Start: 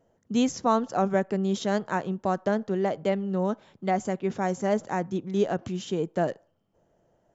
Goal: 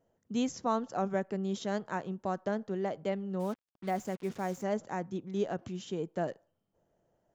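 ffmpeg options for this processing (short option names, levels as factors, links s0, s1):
-filter_complex "[0:a]asplit=3[s0][s1][s2];[s0]afade=t=out:st=3.39:d=0.02[s3];[s1]acrusher=bits=6:mix=0:aa=0.5,afade=t=in:st=3.39:d=0.02,afade=t=out:st=4.62:d=0.02[s4];[s2]afade=t=in:st=4.62:d=0.02[s5];[s3][s4][s5]amix=inputs=3:normalize=0,volume=0.422"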